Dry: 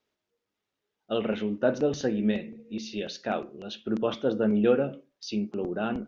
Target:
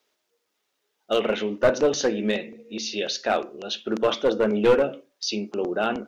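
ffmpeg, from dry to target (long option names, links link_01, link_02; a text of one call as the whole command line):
ffmpeg -i in.wav -af "bass=frequency=250:gain=-15,treble=frequency=4000:gain=5,aeval=exprs='clip(val(0),-1,0.0708)':channel_layout=same,volume=8dB" out.wav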